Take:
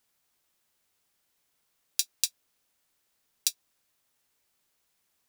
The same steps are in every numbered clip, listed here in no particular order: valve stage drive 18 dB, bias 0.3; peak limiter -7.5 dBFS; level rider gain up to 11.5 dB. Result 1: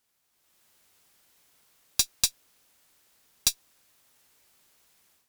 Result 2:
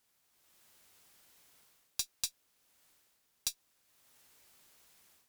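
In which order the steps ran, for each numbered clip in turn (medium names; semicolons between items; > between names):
valve stage > level rider > peak limiter; level rider > peak limiter > valve stage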